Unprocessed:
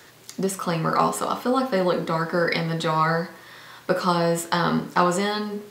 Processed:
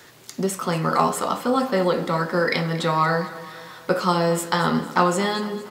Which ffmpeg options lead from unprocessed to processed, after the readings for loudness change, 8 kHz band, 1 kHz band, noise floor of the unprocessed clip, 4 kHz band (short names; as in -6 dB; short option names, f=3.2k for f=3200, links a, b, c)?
+1.0 dB, +1.0 dB, +1.0 dB, -50 dBFS, +1.0 dB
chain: -af "aecho=1:1:230|460|690|920|1150:0.15|0.0838|0.0469|0.0263|0.0147,volume=1dB"